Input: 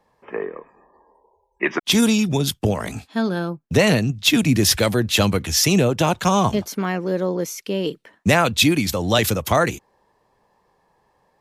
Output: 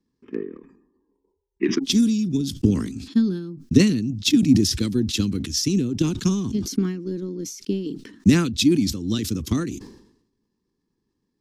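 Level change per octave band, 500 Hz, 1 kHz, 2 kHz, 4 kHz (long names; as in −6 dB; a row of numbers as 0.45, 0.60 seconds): −8.5, −18.5, −12.0, −5.5 decibels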